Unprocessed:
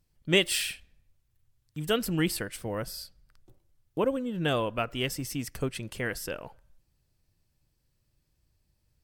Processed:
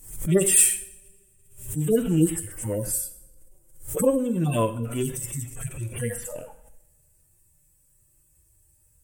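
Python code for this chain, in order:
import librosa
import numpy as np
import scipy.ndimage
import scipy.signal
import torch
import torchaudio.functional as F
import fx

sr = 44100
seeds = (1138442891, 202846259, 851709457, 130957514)

y = fx.hpss_only(x, sr, part='harmonic')
y = fx.high_shelf_res(y, sr, hz=6200.0, db=12.5, q=3.0)
y = fx.rev_double_slope(y, sr, seeds[0], early_s=0.63, late_s=2.3, knee_db=-25, drr_db=10.0)
y = fx.pre_swell(y, sr, db_per_s=96.0)
y = F.gain(torch.from_numpy(y), 7.5).numpy()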